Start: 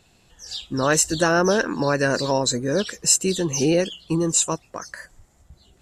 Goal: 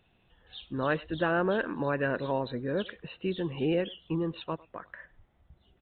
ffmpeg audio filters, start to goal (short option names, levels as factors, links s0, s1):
-filter_complex "[0:a]asplit=2[s0][s1];[s1]adelay=100,highpass=300,lowpass=3400,asoftclip=type=hard:threshold=0.237,volume=0.0794[s2];[s0][s2]amix=inputs=2:normalize=0,aresample=8000,aresample=44100,volume=0.376"